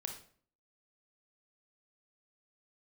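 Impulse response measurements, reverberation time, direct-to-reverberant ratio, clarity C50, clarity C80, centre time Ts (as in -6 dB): 0.50 s, 3.5 dB, 7.0 dB, 11.5 dB, 19 ms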